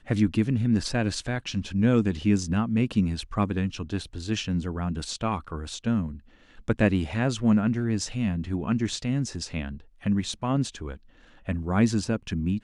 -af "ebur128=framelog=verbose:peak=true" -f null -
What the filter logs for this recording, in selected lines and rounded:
Integrated loudness:
  I:         -26.9 LUFS
  Threshold: -37.2 LUFS
Loudness range:
  LRA:         4.2 LU
  Threshold: -47.4 LUFS
  LRA low:   -29.8 LUFS
  LRA high:  -25.5 LUFS
True peak:
  Peak:       -9.2 dBFS